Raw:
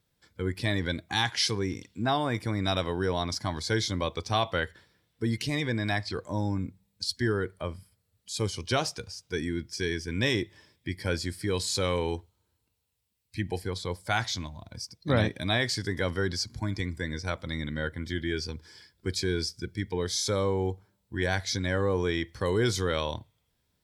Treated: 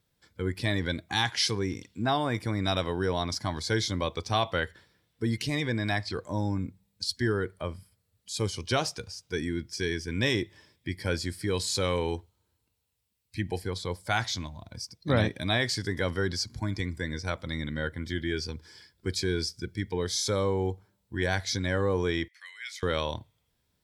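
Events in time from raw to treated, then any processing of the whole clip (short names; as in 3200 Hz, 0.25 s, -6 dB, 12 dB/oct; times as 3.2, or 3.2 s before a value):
22.28–22.83 ladder high-pass 1900 Hz, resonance 70%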